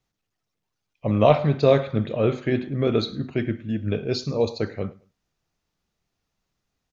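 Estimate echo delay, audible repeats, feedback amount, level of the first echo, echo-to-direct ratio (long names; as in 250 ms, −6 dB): 107 ms, 2, 24%, −22.0 dB, −22.0 dB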